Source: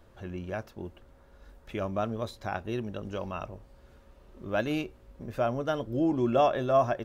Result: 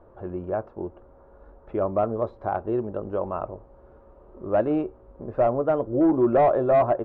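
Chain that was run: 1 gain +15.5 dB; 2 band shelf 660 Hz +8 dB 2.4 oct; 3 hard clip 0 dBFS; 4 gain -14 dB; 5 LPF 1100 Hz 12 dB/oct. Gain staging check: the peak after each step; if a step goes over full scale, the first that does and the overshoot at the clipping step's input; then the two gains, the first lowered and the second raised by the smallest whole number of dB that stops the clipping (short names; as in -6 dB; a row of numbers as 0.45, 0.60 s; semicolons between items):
+2.0, +10.0, 0.0, -14.0, -13.5 dBFS; step 1, 10.0 dB; step 1 +5.5 dB, step 4 -4 dB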